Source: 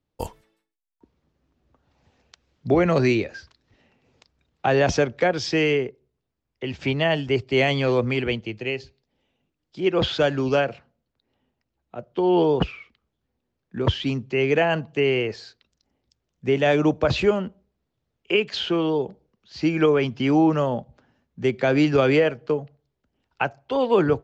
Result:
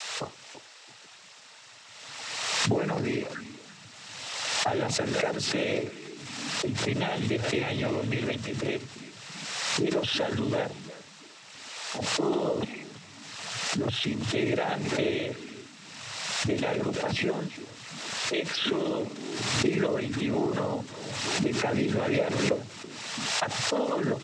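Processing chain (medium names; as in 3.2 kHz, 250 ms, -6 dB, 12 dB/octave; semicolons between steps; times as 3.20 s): level-controlled noise filter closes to 330 Hz, open at -17.5 dBFS; compression 4:1, threshold -27 dBFS, peak gain reduction 11.5 dB; band noise 530–6300 Hz -51 dBFS; frequency-shifting echo 334 ms, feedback 31%, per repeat -100 Hz, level -15 dB; noise-vocoded speech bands 12; swell ahead of each attack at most 33 dB/s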